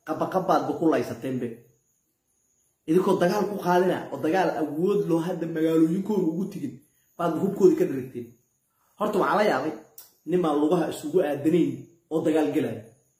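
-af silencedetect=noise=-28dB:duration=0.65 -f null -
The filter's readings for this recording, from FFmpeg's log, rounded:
silence_start: 1.52
silence_end: 2.89 | silence_duration: 1.37
silence_start: 8.22
silence_end: 9.01 | silence_duration: 0.78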